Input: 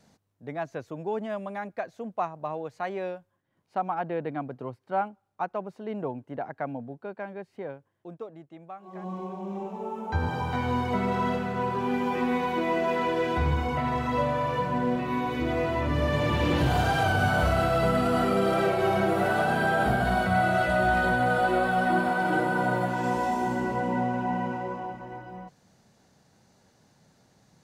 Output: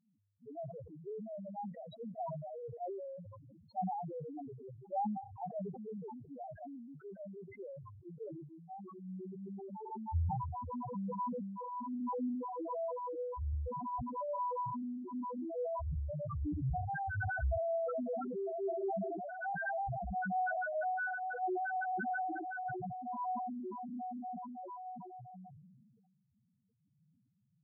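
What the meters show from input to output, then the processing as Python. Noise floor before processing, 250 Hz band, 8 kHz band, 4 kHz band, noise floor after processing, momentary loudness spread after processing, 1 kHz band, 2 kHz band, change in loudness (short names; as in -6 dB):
-70 dBFS, -13.0 dB, under -30 dB, under -35 dB, -76 dBFS, 13 LU, -11.0 dB, -14.0 dB, -12.5 dB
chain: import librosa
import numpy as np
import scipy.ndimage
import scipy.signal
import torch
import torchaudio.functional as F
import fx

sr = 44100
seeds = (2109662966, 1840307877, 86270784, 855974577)

y = fx.tremolo_random(x, sr, seeds[0], hz=3.5, depth_pct=55)
y = fx.spec_topn(y, sr, count=1)
y = fx.sustainer(y, sr, db_per_s=33.0)
y = F.gain(torch.from_numpy(y), -1.0).numpy()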